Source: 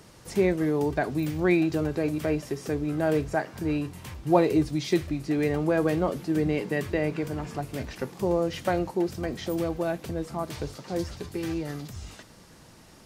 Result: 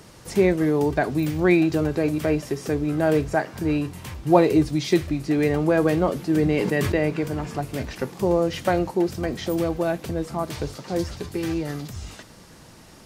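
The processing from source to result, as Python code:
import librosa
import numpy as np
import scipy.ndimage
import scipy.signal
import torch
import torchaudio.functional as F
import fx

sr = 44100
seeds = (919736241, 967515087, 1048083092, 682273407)

y = fx.sustainer(x, sr, db_per_s=28.0, at=(6.3, 6.96))
y = F.gain(torch.from_numpy(y), 4.5).numpy()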